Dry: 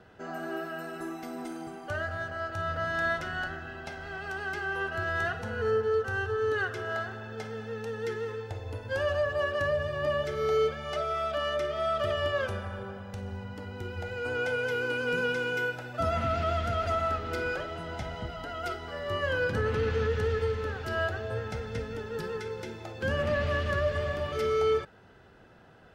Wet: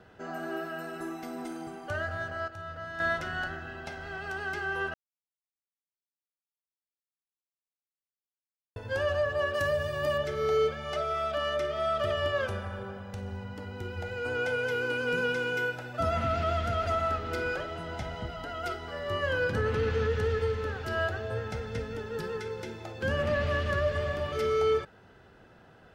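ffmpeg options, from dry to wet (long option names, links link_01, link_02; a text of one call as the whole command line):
ffmpeg -i in.wav -filter_complex "[0:a]asettb=1/sr,asplit=3[link_01][link_02][link_03];[link_01]atrim=end=9.544[link_04];[link_02]atrim=start=9.54:end=10.18,asetpts=PTS-STARTPTS,afade=type=in:duration=0.004:curve=qsin,afade=type=out:start_time=0.636:duration=0.004:curve=qsin,aemphasis=mode=production:type=50fm[link_05];[link_03]atrim=start=10.176[link_06];[link_04][link_05]acrossfade=duration=0.004:curve1=hsin:curve2=qsin[link_07];[link_07][link_06]acrossfade=duration=0.004:curve1=qsin:curve2=hsin,asplit=5[link_08][link_09][link_10][link_11][link_12];[link_08]atrim=end=2.482[link_13];[link_09]atrim=start=2.478:end=3.002,asetpts=PTS-STARTPTS,volume=-8.5dB[link_14];[link_10]atrim=start=2.998:end=4.94,asetpts=PTS-STARTPTS,afade=type=out:start_time=1.938:duration=0.004:curve=hsin[link_15];[link_11]atrim=start=4.94:end=8.76,asetpts=PTS-STARTPTS,volume=0[link_16];[link_12]atrim=start=8.76,asetpts=PTS-STARTPTS,afade=type=in:duration=0.004:curve=hsin[link_17];[link_13][link_14]acrossfade=duration=0.004:curve1=hsin:curve2=hsin[link_18];[link_15][link_16][link_17]concat=n=3:v=0:a=1[link_19];[link_18][link_19]acrossfade=duration=0.004:curve1=hsin:curve2=hsin" out.wav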